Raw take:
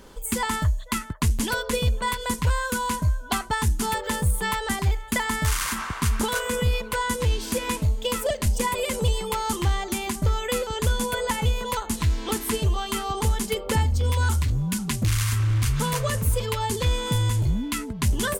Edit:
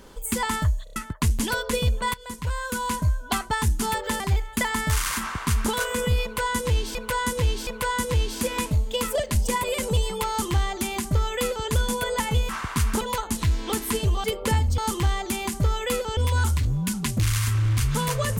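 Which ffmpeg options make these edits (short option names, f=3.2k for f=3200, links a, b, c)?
-filter_complex "[0:a]asplit=14[a][b][c][d][e][f][g][h][i][j][k][l][m][n];[a]atrim=end=0.872[o];[b]atrim=start=0.838:end=0.872[p];[c]atrim=start=0.838:end=0.872[q];[d]atrim=start=0.838:end=0.872[r];[e]atrim=start=0.958:end=2.14,asetpts=PTS-STARTPTS,afade=t=out:st=1.178:d=0.004:c=hsin:silence=0.177828[s];[f]atrim=start=2.14:end=4.202,asetpts=PTS-STARTPTS,afade=t=in:d=0.83:silence=0.177828[t];[g]atrim=start=4.748:end=7.502[u];[h]atrim=start=6.778:end=7.502[v];[i]atrim=start=6.778:end=11.602[w];[j]atrim=start=5.748:end=6.272[x];[k]atrim=start=11.598:end=12.832[y];[l]atrim=start=13.478:end=14.022[z];[m]atrim=start=9.398:end=10.792[aa];[n]atrim=start=14.018[ab];[o][p]acrossfade=d=0.004:c1=hsin:c2=hsin[ac];[ac][q]acrossfade=d=0.004:c1=hsin:c2=hsin[ad];[ad][r]acrossfade=d=0.004:c1=hsin:c2=hsin[ae];[s][t]concat=n=2:v=0:a=1[af];[ae][af]acrossfade=d=0.004:c1=hsin:c2=hsin[ag];[ag][u]acrossfade=d=0.004:c1=hsin:c2=hsin[ah];[ah][v]acrossfade=d=0.004:c1=hsin:c2=hsin[ai];[ai][w]acrossfade=d=0.004:c1=hsin:c2=hsin[aj];[aj][x]acrossfade=d=0.004:c1=hsin:c2=hsin[ak];[ak][y]acrossfade=d=0.004:c1=hsin:c2=hsin[al];[al][z]acrossfade=d=0.004:c1=hsin:c2=hsin[am];[am][aa]acrossfade=d=0.004:c1=hsin:c2=hsin[an];[an][ab]acrossfade=d=0.004:c1=hsin:c2=hsin"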